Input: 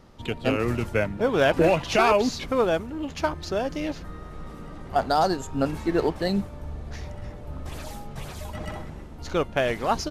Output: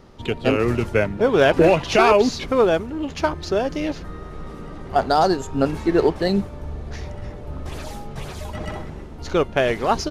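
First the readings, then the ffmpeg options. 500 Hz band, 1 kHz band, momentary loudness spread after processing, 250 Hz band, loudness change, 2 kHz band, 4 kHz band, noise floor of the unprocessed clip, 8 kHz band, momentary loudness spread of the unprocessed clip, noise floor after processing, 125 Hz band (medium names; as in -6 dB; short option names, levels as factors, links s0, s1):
+5.5 dB, +4.0 dB, 18 LU, +5.0 dB, +5.0 dB, +4.0 dB, +4.0 dB, -41 dBFS, +2.5 dB, 18 LU, -36 dBFS, +4.0 dB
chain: -af "equalizer=f=400:t=o:w=0.33:g=5,equalizer=f=8000:t=o:w=0.33:g=-3,equalizer=f=12500:t=o:w=0.33:g=-7,volume=1.58"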